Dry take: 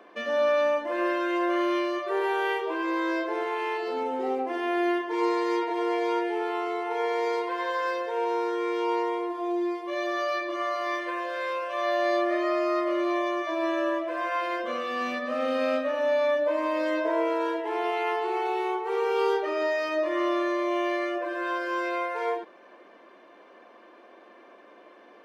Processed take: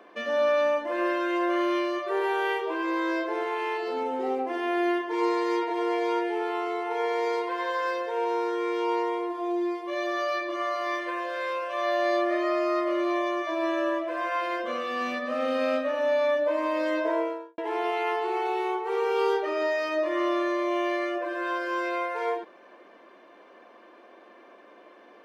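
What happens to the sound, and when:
0:17.09–0:17.58: fade out and dull

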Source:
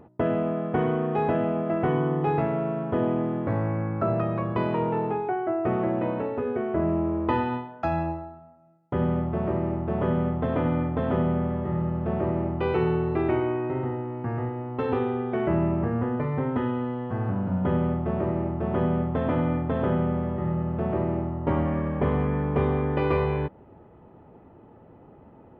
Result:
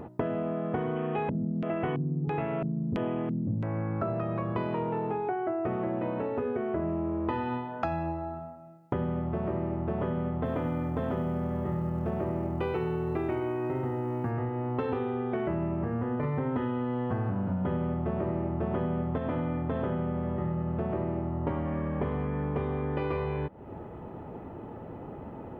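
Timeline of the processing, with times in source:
0:00.96–0:03.64: auto-filter low-pass square 1.5 Hz 200–2,900 Hz
0:10.45–0:14.31: floating-point word with a short mantissa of 6 bits
0:16.23–0:19.18: clip gain +4 dB
whole clip: downward compressor, threshold −38 dBFS; level +9 dB

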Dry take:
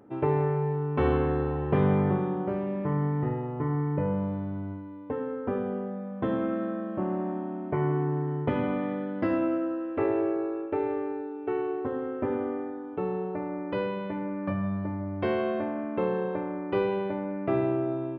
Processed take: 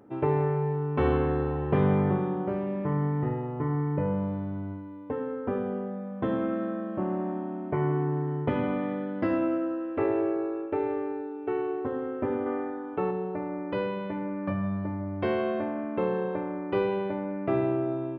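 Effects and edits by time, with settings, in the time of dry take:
0:12.46–0:13.11: parametric band 1,500 Hz +6 dB 2.7 octaves

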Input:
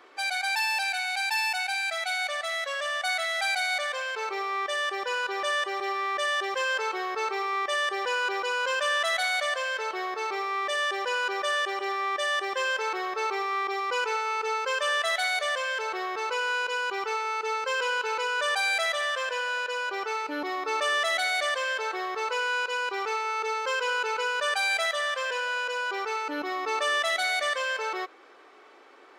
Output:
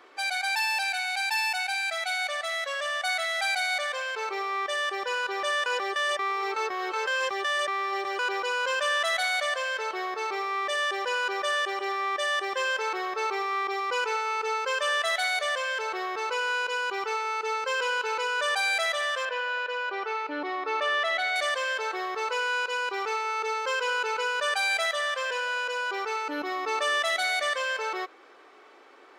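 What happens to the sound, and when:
0:05.66–0:08.19: reverse
0:19.25–0:21.36: three-way crossover with the lows and the highs turned down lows −19 dB, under 190 Hz, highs −17 dB, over 4,200 Hz

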